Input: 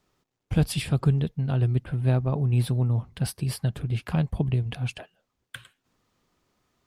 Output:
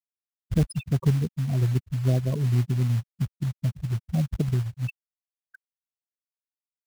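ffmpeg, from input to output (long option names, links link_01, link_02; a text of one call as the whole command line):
ffmpeg -i in.wav -af "afftfilt=real='re*gte(hypot(re,im),0.112)':imag='im*gte(hypot(re,im),0.112)':win_size=1024:overlap=0.75,acrusher=bits=5:mode=log:mix=0:aa=0.000001" out.wav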